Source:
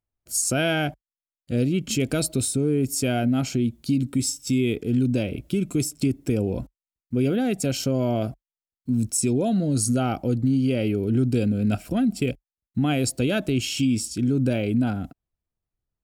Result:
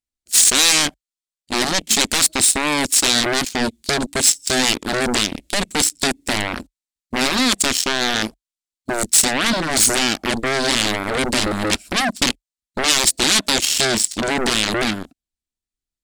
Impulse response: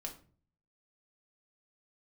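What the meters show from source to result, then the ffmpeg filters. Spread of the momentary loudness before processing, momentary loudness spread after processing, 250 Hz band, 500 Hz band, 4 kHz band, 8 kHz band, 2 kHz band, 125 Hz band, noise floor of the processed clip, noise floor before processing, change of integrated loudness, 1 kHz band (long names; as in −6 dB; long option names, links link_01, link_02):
6 LU, 9 LU, −2.5 dB, +2.5 dB, +17.0 dB, +13.0 dB, +14.0 dB, −8.5 dB, below −85 dBFS, below −85 dBFS, +7.0 dB, +11.5 dB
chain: -af "aeval=exprs='0.282*(cos(1*acos(clip(val(0)/0.282,-1,1)))-cos(1*PI/2))+0.0447*(cos(7*acos(clip(val(0)/0.282,-1,1)))-cos(7*PI/2))':channel_layout=same,aeval=exprs='0.266*sin(PI/2*3.98*val(0)/0.266)':channel_layout=same,equalizer=frequency=125:width_type=o:width=1:gain=-11,equalizer=frequency=250:width_type=o:width=1:gain=6,equalizer=frequency=500:width_type=o:width=1:gain=-4,equalizer=frequency=1000:width_type=o:width=1:gain=-4,equalizer=frequency=2000:width_type=o:width=1:gain=3,equalizer=frequency=4000:width_type=o:width=1:gain=8,equalizer=frequency=8000:width_type=o:width=1:gain=11,volume=-2.5dB"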